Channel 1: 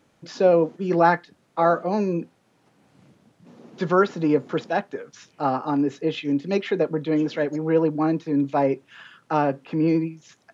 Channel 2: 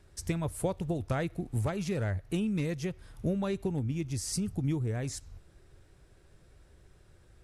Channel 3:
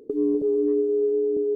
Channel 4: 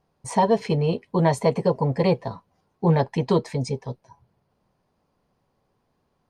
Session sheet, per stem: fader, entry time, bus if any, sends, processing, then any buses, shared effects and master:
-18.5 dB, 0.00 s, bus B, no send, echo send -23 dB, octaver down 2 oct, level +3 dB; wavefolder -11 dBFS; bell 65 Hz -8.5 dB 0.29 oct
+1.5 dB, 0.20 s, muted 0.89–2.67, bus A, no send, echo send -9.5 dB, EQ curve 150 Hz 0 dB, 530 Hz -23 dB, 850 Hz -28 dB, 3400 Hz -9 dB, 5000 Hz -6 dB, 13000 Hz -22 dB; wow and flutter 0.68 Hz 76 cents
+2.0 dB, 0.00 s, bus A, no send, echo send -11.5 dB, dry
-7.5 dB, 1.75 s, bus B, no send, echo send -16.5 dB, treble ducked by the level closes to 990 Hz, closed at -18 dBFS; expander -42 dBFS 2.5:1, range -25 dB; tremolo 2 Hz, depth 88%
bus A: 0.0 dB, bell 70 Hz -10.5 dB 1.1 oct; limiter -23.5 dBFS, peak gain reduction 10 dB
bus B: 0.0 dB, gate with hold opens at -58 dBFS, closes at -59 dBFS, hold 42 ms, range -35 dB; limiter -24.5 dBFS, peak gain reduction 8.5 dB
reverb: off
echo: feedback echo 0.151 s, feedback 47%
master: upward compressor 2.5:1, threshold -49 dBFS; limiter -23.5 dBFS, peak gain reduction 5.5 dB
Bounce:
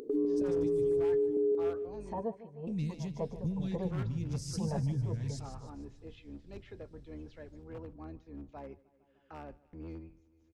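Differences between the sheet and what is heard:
stem 1 -18.5 dB -> -26.0 dB; stem 4 -7.5 dB -> -15.5 dB

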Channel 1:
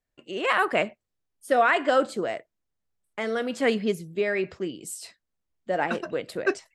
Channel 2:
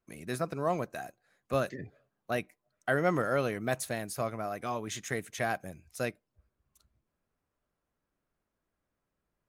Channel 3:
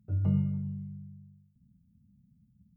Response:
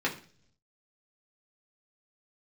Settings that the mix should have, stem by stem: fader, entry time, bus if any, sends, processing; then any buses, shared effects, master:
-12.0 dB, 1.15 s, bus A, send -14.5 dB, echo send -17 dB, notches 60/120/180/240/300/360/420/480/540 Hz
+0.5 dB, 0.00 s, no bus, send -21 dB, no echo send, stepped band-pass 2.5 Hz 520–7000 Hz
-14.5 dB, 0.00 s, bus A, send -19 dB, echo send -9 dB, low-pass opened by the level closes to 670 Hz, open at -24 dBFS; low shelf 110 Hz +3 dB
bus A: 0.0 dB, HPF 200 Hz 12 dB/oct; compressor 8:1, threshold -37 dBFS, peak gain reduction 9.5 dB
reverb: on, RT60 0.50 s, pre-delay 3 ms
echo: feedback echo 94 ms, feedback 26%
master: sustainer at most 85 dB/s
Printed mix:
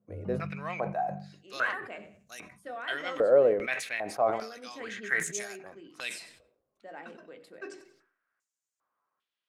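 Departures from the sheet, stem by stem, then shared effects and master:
stem 1 -12.0 dB -> -21.0 dB; stem 2 +0.5 dB -> +11.5 dB; stem 3 -14.5 dB -> -7.5 dB

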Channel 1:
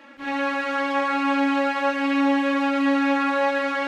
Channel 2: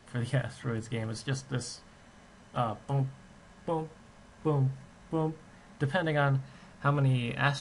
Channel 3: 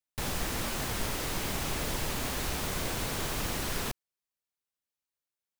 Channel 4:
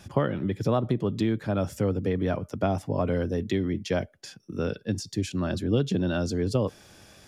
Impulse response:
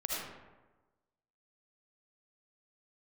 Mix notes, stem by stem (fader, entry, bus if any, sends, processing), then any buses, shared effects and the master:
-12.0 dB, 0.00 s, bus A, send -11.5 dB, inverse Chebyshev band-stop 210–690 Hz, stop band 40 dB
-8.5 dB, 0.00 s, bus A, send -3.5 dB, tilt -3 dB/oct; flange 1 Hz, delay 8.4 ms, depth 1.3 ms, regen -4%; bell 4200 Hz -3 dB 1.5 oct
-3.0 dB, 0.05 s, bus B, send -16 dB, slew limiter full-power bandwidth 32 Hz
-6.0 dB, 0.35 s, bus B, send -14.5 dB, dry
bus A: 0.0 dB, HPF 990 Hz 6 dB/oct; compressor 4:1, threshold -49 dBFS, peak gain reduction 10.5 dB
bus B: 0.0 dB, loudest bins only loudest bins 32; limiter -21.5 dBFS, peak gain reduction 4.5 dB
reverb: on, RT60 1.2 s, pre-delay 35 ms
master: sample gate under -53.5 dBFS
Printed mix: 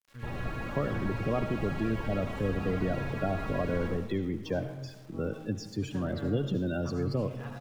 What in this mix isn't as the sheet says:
stem 2 -8.5 dB -> -15.5 dB; stem 4: entry 0.35 s -> 0.60 s

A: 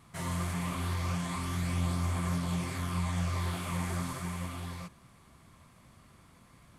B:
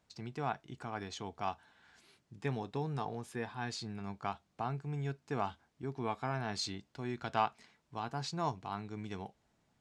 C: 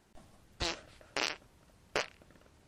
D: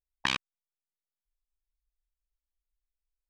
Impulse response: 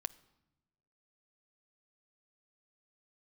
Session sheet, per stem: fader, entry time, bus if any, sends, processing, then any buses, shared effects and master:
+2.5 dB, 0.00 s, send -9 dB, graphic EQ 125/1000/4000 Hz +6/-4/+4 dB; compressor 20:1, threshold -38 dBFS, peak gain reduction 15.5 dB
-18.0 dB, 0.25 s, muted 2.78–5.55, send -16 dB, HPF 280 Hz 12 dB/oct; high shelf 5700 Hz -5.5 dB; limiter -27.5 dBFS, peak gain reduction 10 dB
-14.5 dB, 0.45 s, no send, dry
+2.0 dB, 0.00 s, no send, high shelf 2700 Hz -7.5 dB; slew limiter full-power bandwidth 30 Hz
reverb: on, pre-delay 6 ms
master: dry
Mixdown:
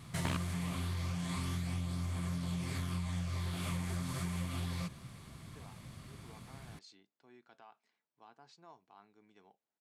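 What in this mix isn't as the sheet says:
stem B: send off; stem C: muted

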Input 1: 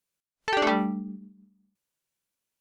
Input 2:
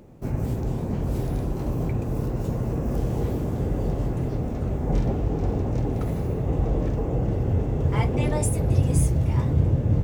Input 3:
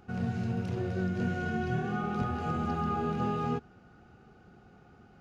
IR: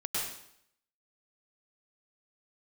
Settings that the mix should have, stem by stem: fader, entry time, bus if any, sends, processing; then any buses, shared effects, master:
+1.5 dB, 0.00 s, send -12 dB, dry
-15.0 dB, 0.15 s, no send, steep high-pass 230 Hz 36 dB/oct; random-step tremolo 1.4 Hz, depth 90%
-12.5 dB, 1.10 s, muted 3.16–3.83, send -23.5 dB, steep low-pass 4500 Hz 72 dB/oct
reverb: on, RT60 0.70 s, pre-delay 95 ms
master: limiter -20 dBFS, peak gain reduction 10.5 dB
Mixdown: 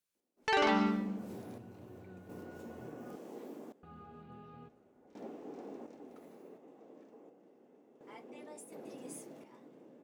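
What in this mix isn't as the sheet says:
stem 1 +1.5 dB -> -5.5 dB; stem 3 -12.5 dB -> -22.5 dB

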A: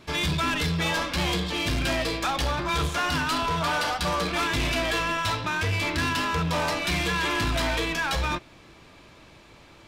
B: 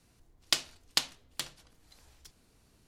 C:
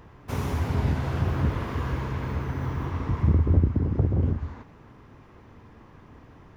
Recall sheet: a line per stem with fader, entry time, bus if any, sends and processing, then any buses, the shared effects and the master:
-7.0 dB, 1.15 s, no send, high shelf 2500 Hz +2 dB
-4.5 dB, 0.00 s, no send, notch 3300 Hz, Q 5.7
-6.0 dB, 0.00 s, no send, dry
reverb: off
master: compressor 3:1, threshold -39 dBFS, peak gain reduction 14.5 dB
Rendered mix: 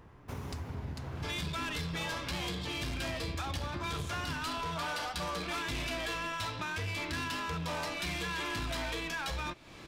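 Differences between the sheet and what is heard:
stem A -7.0 dB -> +1.0 dB; stem B -4.5 dB -> -15.5 dB

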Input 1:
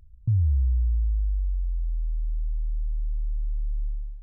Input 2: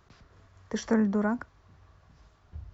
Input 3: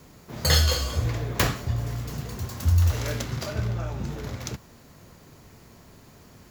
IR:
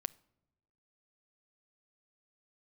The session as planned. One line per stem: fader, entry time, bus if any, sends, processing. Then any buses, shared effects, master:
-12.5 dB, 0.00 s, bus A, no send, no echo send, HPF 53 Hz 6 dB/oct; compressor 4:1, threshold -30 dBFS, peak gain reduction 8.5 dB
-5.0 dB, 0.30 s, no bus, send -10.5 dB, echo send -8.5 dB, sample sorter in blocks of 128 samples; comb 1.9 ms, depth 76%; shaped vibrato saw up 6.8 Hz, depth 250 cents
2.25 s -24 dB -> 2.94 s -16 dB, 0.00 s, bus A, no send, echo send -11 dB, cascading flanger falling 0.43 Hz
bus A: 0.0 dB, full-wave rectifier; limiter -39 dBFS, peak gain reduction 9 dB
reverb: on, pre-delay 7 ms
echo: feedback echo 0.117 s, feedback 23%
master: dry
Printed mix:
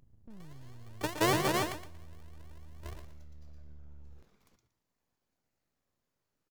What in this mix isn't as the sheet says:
stem 1 -12.5 dB -> -1.5 dB; stem 3 -24.0 dB -> -35.0 dB; master: extra low shelf 140 Hz -5 dB

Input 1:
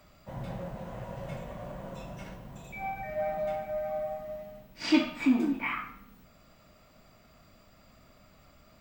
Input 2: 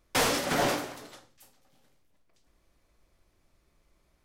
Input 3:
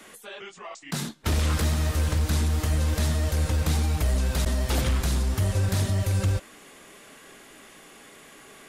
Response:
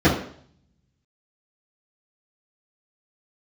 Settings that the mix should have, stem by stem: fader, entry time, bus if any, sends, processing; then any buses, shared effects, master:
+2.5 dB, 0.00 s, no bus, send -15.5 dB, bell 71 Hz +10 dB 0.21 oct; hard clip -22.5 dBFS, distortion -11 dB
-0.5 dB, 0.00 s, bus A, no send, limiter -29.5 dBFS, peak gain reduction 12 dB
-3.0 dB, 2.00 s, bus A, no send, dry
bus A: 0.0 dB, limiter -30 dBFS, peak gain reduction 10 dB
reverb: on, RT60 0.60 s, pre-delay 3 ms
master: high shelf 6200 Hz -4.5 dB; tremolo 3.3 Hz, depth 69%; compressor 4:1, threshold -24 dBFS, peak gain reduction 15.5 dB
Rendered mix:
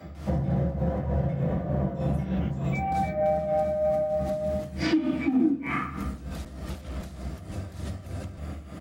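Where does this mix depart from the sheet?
stem 1: send -15.5 dB -> -9.5 dB; stem 2 -0.5 dB -> -11.0 dB

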